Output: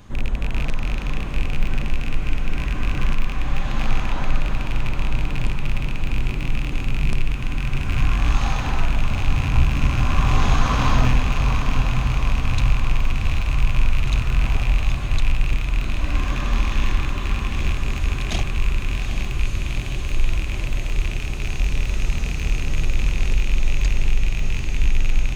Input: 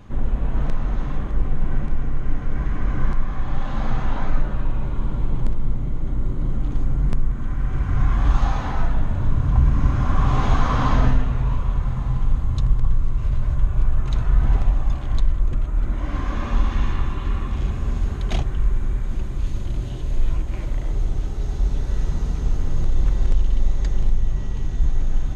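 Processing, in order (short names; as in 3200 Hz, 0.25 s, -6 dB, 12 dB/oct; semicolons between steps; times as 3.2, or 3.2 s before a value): rattling part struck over -22 dBFS, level -22 dBFS; high shelf 2800 Hz +11 dB; on a send: diffused feedback echo 0.792 s, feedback 70%, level -7 dB; on the sum: gain -1.5 dB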